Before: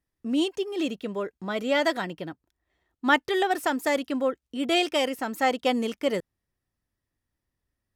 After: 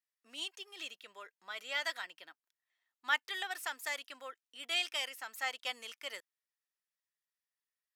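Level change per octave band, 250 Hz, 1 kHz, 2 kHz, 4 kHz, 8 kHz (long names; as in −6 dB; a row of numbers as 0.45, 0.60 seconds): −34.5, −15.0, −7.5, −6.0, −6.0 decibels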